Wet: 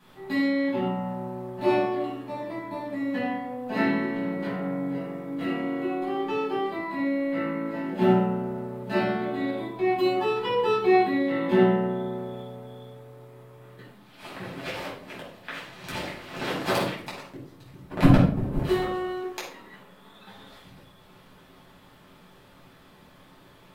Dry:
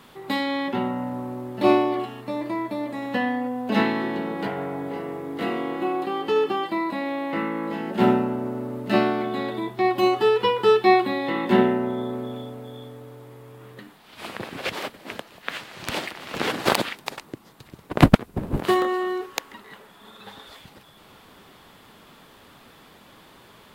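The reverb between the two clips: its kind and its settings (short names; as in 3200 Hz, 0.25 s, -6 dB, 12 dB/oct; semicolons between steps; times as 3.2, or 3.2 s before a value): shoebox room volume 680 m³, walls furnished, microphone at 8.4 m; gain -15 dB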